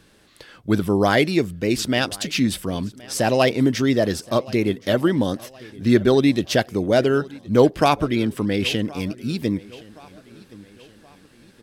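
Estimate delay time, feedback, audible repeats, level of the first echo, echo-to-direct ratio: 1071 ms, 47%, 2, -22.0 dB, -21.0 dB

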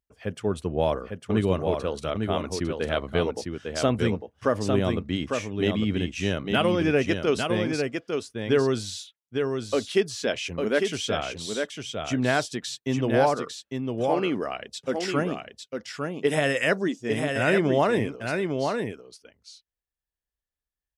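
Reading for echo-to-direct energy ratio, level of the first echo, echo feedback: -5.0 dB, -5.0 dB, no regular repeats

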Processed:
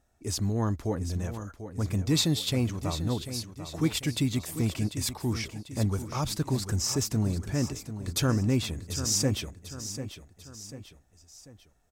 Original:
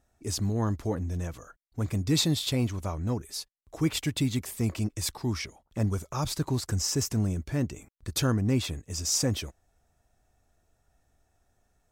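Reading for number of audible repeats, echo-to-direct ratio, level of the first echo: 3, -10.0 dB, -11.0 dB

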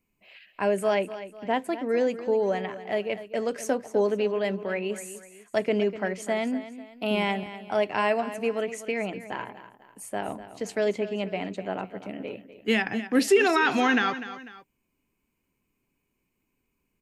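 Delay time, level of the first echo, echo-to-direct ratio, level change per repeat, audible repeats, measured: 248 ms, -13.5 dB, -13.0 dB, -7.5 dB, 2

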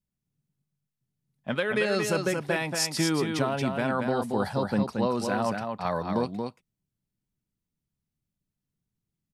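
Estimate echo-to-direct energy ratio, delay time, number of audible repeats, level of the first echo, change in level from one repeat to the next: -5.0 dB, 228 ms, 1, -5.0 dB, no regular repeats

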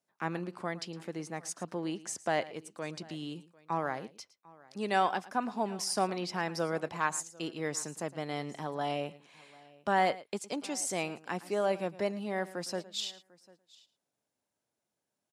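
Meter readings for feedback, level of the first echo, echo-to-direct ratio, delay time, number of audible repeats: no regular repeats, -18.0 dB, -17.0 dB, 111 ms, 2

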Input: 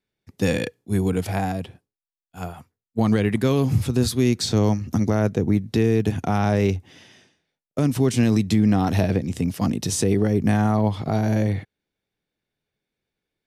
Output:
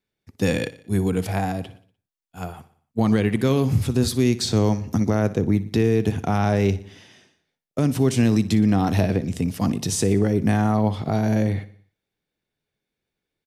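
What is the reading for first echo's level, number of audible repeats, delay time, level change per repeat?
-17.0 dB, 4, 60 ms, -5.5 dB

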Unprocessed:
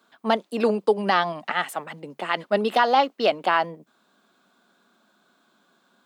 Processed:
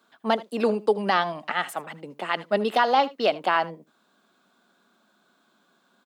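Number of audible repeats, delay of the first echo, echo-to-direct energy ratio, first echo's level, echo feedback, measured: 1, 78 ms, -19.5 dB, -19.5 dB, no regular repeats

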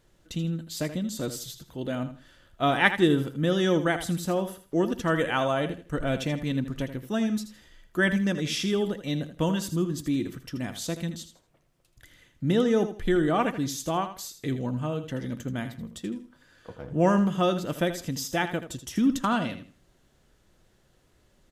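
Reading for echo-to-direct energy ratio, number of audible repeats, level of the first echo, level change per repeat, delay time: -10.5 dB, 2, -11.0 dB, -12.0 dB, 80 ms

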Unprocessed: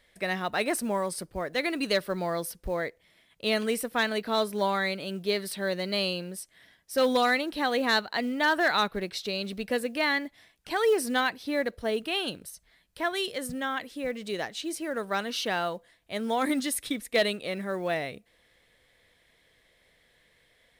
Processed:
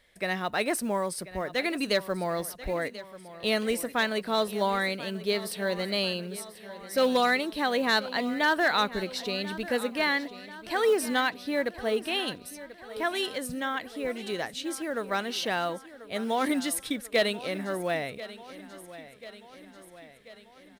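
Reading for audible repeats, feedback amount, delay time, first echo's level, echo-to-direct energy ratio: 5, 58%, 1038 ms, -16.0 dB, -14.0 dB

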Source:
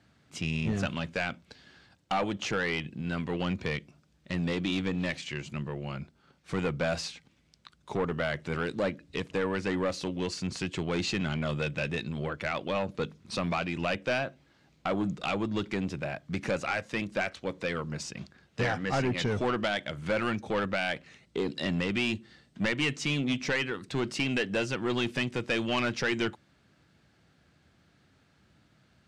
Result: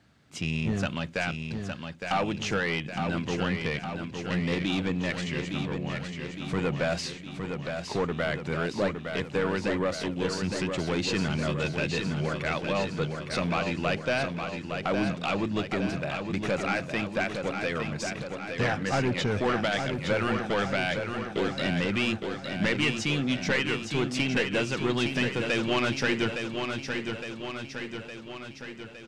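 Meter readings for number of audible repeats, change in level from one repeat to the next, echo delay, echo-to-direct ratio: 7, -4.5 dB, 862 ms, -4.0 dB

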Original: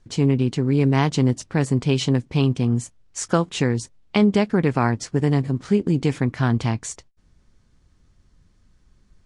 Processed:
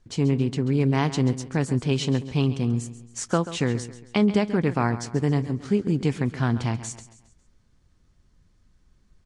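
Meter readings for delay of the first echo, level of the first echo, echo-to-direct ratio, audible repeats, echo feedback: 136 ms, -14.0 dB, -13.0 dB, 3, 42%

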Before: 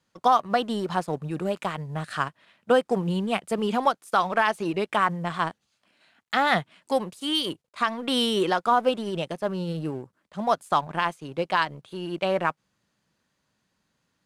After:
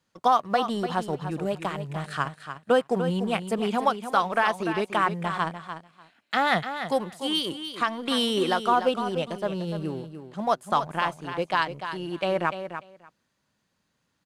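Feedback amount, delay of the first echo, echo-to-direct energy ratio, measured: 15%, 295 ms, -9.5 dB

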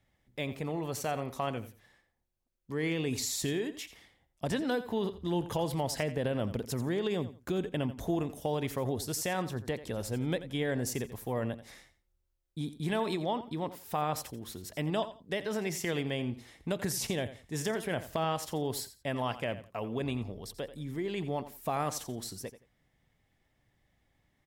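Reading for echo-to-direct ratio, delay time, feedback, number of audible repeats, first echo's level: -14.0 dB, 86 ms, 22%, 2, -14.0 dB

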